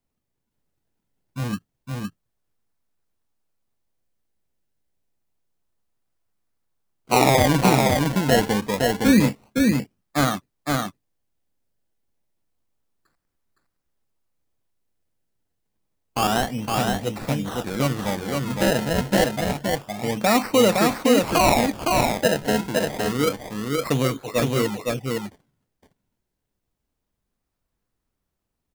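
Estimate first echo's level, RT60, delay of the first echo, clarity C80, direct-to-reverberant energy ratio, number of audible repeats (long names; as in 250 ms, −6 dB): −3.0 dB, no reverb audible, 513 ms, no reverb audible, no reverb audible, 1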